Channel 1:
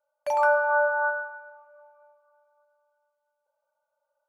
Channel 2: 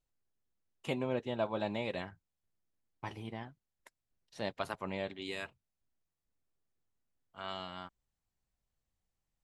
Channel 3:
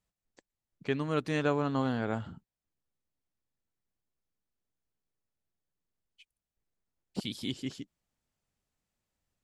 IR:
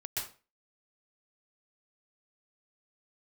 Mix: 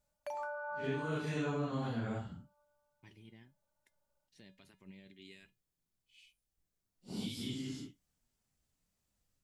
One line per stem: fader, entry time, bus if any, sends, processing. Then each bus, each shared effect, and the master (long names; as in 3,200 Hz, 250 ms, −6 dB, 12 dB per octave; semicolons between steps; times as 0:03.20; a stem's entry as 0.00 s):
−8.0 dB, 0.00 s, no send, downward compressor, threshold −26 dBFS, peak gain reduction 9 dB
−5.5 dB, 0.00 s, no send, tuned comb filter 190 Hz, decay 0.21 s, harmonics odd, mix 60%; brickwall limiter −37 dBFS, peak gain reduction 10 dB; flat-topped bell 850 Hz −14 dB
−1.5 dB, 0.00 s, no send, random phases in long frames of 200 ms; bass and treble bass +5 dB, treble +6 dB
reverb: not used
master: downward compressor 1.5 to 1, threshold −46 dBFS, peak gain reduction 8 dB